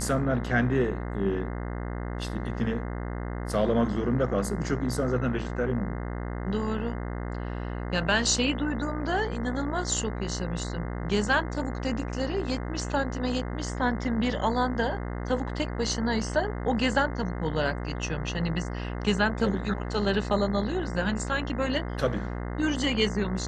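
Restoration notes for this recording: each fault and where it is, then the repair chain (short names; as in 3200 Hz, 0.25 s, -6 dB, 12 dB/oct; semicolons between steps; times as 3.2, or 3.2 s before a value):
buzz 60 Hz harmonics 35 -33 dBFS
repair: de-hum 60 Hz, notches 35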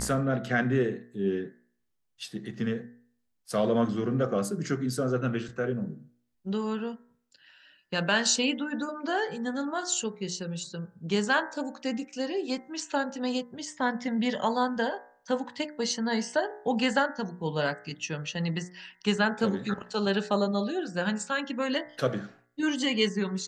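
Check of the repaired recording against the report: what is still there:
none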